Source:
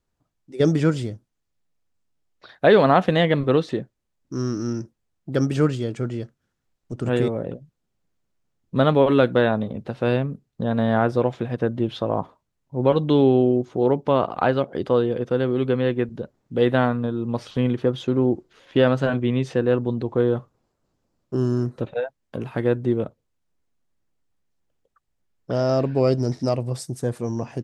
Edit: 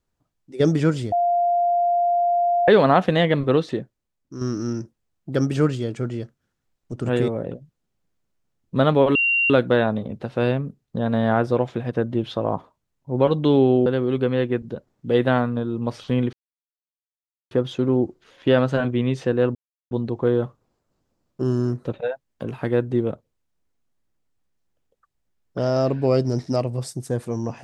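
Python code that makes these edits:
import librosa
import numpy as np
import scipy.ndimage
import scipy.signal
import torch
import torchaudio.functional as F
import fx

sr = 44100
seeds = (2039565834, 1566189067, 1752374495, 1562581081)

y = fx.edit(x, sr, fx.bleep(start_s=1.12, length_s=1.56, hz=698.0, db=-16.5),
    fx.fade_out_to(start_s=3.71, length_s=0.7, floor_db=-7.5),
    fx.insert_tone(at_s=9.15, length_s=0.35, hz=2760.0, db=-16.5),
    fx.cut(start_s=13.51, length_s=1.82),
    fx.insert_silence(at_s=17.8, length_s=1.18),
    fx.insert_silence(at_s=19.84, length_s=0.36), tone=tone)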